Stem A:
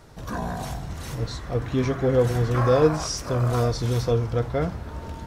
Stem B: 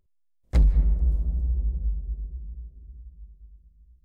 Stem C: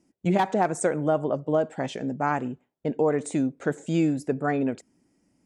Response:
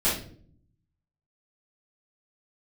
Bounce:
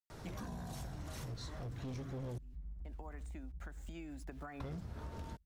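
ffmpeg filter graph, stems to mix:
-filter_complex "[0:a]adelay=100,volume=-1dB,asplit=3[a][b][c];[a]atrim=end=2.38,asetpts=PTS-STARTPTS,afade=t=out:st=2.376:d=0.004:c=hsin[d];[b]atrim=start=2.38:end=4.6,asetpts=PTS-STARTPTS,volume=0[e];[c]atrim=start=4.6,asetpts=PTS-STARTPTS,afade=t=in:d=0.004:c=hsin[f];[d][e][f]concat=n=3:v=0:a=1[g];[1:a]acompressor=threshold=-24dB:ratio=2,adelay=1800,volume=-8dB[h];[2:a]equalizer=f=1.1k:t=o:w=2.6:g=6,acrossover=split=320|2700[i][j][k];[i]acompressor=threshold=-37dB:ratio=4[l];[j]acompressor=threshold=-23dB:ratio=4[m];[k]acompressor=threshold=-45dB:ratio=4[n];[l][m][n]amix=inputs=3:normalize=0,aeval=exprs='val(0)*gte(abs(val(0)),0.00447)':c=same,volume=-7.5dB[o];[h][o]amix=inputs=2:normalize=0,equalizer=f=470:t=o:w=0.63:g=-13.5,acompressor=threshold=-40dB:ratio=12,volume=0dB[p];[g][p]amix=inputs=2:normalize=0,acrossover=split=300|3000[q][r][s];[r]acompressor=threshold=-39dB:ratio=6[t];[q][t][s]amix=inputs=3:normalize=0,asoftclip=type=hard:threshold=-26.5dB,acompressor=threshold=-43dB:ratio=5"

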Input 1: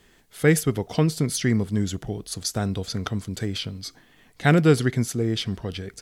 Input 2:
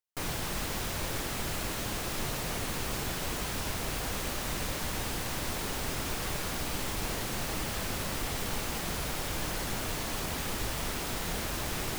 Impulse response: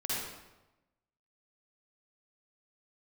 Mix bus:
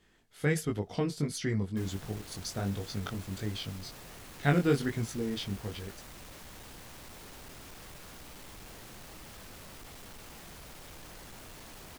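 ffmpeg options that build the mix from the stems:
-filter_complex "[0:a]flanger=delay=18.5:depth=3.8:speed=1.4,highshelf=f=9k:g=-8,volume=-5.5dB[a];[1:a]volume=32.5dB,asoftclip=hard,volume=-32.5dB,adelay=1600,volume=-12.5dB[b];[a][b]amix=inputs=2:normalize=0"

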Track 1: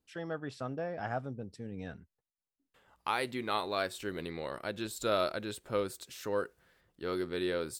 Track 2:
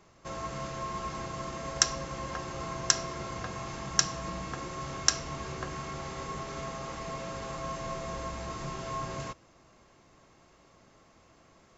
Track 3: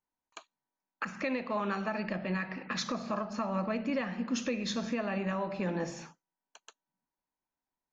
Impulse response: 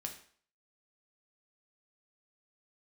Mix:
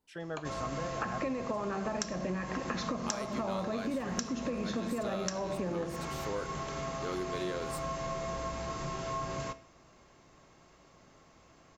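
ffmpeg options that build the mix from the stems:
-filter_complex "[0:a]volume=-3dB,asplit=3[a][b][c];[a]atrim=end=1.69,asetpts=PTS-STARTPTS,afade=t=out:st=1.686:d=0.004:c=hsin[d];[b]atrim=start=1.69:end=2.95,asetpts=PTS-STARTPTS,volume=0[e];[c]atrim=start=2.95,asetpts=PTS-STARTPTS,afade=t=in:d=0.004:c=hsin[f];[d][e][f]concat=n=3:v=0:a=1,asplit=2[g][h];[h]volume=-8.5dB[i];[1:a]adelay=200,volume=-2.5dB,asplit=2[j][k];[k]volume=-5.5dB[l];[2:a]equalizer=f=400:w=0.32:g=14,alimiter=limit=-14.5dB:level=0:latency=1,volume=-5dB,asplit=2[m][n];[n]volume=-7.5dB[o];[3:a]atrim=start_sample=2205[p];[i][l][o]amix=inputs=3:normalize=0[q];[q][p]afir=irnorm=-1:irlink=0[r];[g][j][m][r]amix=inputs=4:normalize=0,acompressor=threshold=-31dB:ratio=10"

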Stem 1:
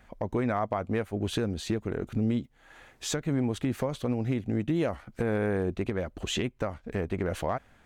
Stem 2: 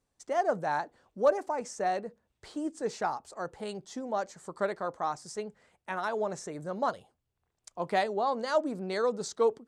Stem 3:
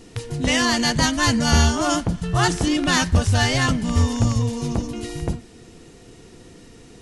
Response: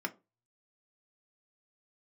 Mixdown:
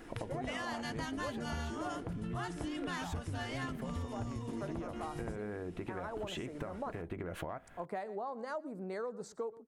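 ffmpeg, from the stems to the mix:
-filter_complex "[0:a]acompressor=threshold=-33dB:ratio=6,volume=0.5dB,asplit=2[a][b];[b]volume=-9.5dB[c];[1:a]equalizer=f=3.3k:w=1.8:g=-9.5,volume=-4dB,asplit=2[d][e];[e]volume=-21dB[f];[2:a]volume=-9dB,asplit=2[g][h];[h]volume=-7.5dB[i];[3:a]atrim=start_sample=2205[j];[c][i]amix=inputs=2:normalize=0[k];[k][j]afir=irnorm=-1:irlink=0[l];[f]aecho=0:1:119:1[m];[a][d][g][l][m]amix=inputs=5:normalize=0,equalizer=f=5.8k:t=o:w=1.3:g=-9,acompressor=threshold=-37dB:ratio=6"

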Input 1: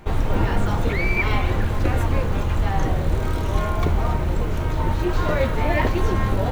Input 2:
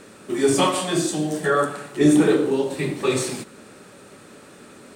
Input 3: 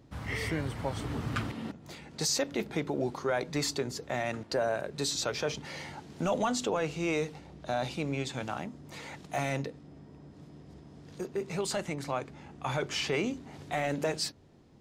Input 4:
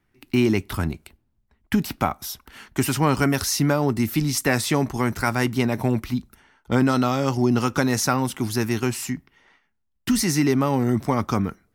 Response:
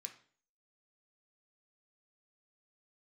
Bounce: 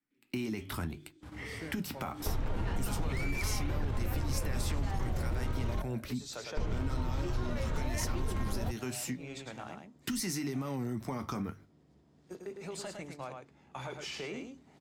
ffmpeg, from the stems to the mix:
-filter_complex "[0:a]alimiter=limit=-13.5dB:level=0:latency=1:release=36,adynamicsmooth=sensitivity=7.5:basefreq=4.8k,adelay=2200,volume=2dB,asplit=3[a][b][c];[a]atrim=end=5.82,asetpts=PTS-STARTPTS,afade=t=out:st=5.816:d=0.004:c=hsin[d];[b]atrim=start=5.82:end=6.57,asetpts=PTS-STARTPTS,volume=0[e];[c]atrim=start=6.57,asetpts=PTS-STARTPTS,afade=t=in:d=0.004:c=hsin[f];[d][e][f]concat=n=3:v=0:a=1[g];[1:a]acompressor=threshold=-26dB:ratio=3,asplit=3[h][i][j];[h]bandpass=f=270:t=q:w=8,volume=0dB[k];[i]bandpass=f=2.29k:t=q:w=8,volume=-6dB[l];[j]bandpass=f=3.01k:t=q:w=8,volume=-9dB[m];[k][l][m]amix=inputs=3:normalize=0,volume=-13dB,asplit=2[n][o];[o]volume=-9dB[p];[2:a]adelay=1100,volume=-8dB,asplit=3[q][r][s];[r]volume=-11dB[t];[s]volume=-5.5dB[u];[3:a]flanger=delay=6.4:depth=7.8:regen=-61:speed=0.75:shape=sinusoidal,volume=1dB,asplit=3[v][w][x];[w]volume=-13dB[y];[x]apad=whole_len=701394[z];[q][z]sidechaincompress=threshold=-32dB:ratio=8:attack=16:release=144[aa];[n][aa][v]amix=inputs=3:normalize=0,agate=range=-26dB:threshold=-45dB:ratio=16:detection=peak,alimiter=limit=-17dB:level=0:latency=1:release=39,volume=0dB[ab];[4:a]atrim=start_sample=2205[ac];[t][y]amix=inputs=2:normalize=0[ad];[ad][ac]afir=irnorm=-1:irlink=0[ae];[p][u]amix=inputs=2:normalize=0,aecho=0:1:107:1[af];[g][ab][ae][af]amix=inputs=4:normalize=0,acrossover=split=190|3000[ag][ah][ai];[ah]acompressor=threshold=-27dB:ratio=6[aj];[ag][aj][ai]amix=inputs=3:normalize=0,bandreject=f=50:t=h:w=6,bandreject=f=100:t=h:w=6,bandreject=f=150:t=h:w=6,acompressor=threshold=-39dB:ratio=2"

